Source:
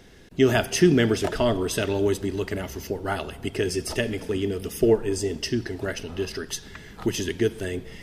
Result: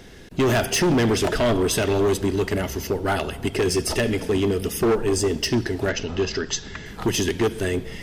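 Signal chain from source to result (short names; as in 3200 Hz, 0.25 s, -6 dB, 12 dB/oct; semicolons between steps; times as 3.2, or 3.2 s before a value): in parallel at +0.5 dB: limiter -15.5 dBFS, peak gain reduction 9 dB; on the sum: overloaded stage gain 16 dB; 5.89–6.86 brick-wall FIR low-pass 7900 Hz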